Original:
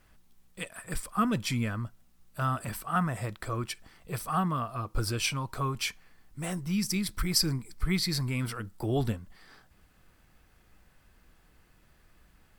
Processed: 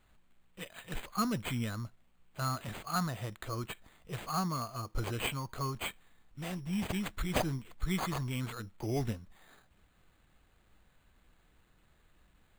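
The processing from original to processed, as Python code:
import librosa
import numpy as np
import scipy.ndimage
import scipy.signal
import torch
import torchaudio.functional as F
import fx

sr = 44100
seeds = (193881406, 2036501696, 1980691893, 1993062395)

y = np.repeat(x[::8], 8)[:len(x)]
y = y * librosa.db_to_amplitude(-5.0)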